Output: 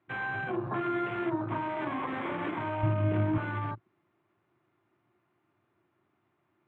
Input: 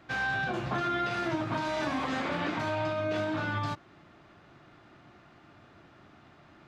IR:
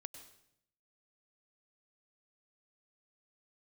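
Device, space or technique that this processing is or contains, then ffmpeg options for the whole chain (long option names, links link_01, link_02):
guitar cabinet: -filter_complex "[0:a]highpass=97,equalizer=frequency=110:width_type=q:width=4:gain=8,equalizer=frequency=360:width_type=q:width=4:gain=10,equalizer=frequency=1000:width_type=q:width=4:gain=7,equalizer=frequency=2200:width_type=q:width=4:gain=4,lowpass=frequency=3500:width=0.5412,lowpass=frequency=3500:width=1.3066,afwtdn=0.0178,asettb=1/sr,asplit=3[link_01][link_02][link_03];[link_01]atrim=end=2.834[link_04];[link_02]atrim=start=2.83:end=3.38,asetpts=PTS-STARTPTS,afade=type=in:duration=0.004:curve=qsin,afade=type=out:start_time=0.546:duration=0.004:curve=qsin,bass=frequency=250:gain=14,treble=frequency=4000:gain=-3[link_05];[link_03]atrim=start=3.376[link_06];[link_04][link_05]acrossfade=duration=0.004:curve1=hsin:curve2=qsin[link_07];[link_07][link_06]acrossfade=duration=0.004:curve1=qsin:curve2=hsin,volume=-5dB"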